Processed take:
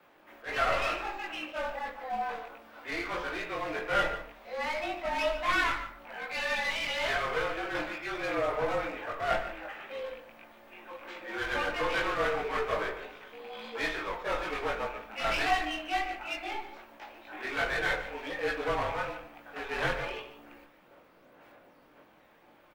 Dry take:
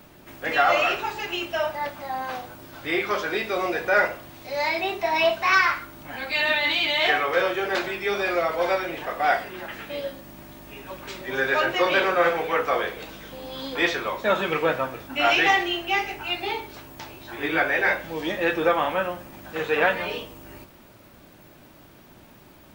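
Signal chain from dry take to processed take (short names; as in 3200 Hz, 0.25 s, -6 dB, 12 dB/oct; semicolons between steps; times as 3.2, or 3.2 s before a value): rattling part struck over -41 dBFS, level -28 dBFS; three-band isolator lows -22 dB, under 390 Hz, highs -15 dB, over 3000 Hz; one-sided clip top -30.5 dBFS; frequency shift -43 Hz; chorus voices 6, 0.97 Hz, delay 20 ms, depth 3 ms; outdoor echo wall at 25 m, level -12 dB; shoebox room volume 340 m³, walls furnished, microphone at 0.48 m; attack slew limiter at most 250 dB/s; gain -2 dB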